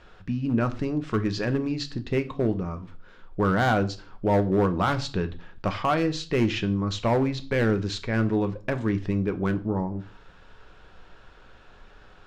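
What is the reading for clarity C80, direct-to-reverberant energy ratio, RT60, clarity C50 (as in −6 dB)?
21.5 dB, 8.5 dB, 0.40 s, 17.0 dB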